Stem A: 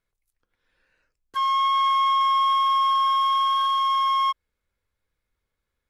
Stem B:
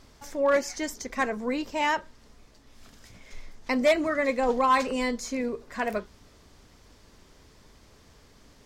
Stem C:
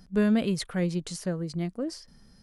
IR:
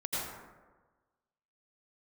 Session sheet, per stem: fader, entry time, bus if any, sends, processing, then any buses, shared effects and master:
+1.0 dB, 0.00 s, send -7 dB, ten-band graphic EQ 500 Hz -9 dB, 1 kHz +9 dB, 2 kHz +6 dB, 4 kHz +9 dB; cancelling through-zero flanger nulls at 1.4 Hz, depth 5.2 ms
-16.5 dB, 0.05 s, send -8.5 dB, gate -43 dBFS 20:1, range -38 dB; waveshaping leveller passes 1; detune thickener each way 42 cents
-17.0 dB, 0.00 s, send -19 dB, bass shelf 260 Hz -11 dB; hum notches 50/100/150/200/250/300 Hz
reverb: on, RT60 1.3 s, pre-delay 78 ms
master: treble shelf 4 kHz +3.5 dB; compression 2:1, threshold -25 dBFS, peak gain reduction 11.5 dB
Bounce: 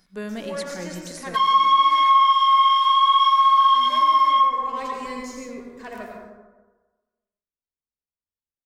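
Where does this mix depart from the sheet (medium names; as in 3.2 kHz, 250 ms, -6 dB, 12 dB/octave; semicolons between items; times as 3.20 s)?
stem B: missing detune thickener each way 42 cents; stem C -17.0 dB -> -5.0 dB; reverb return +8.5 dB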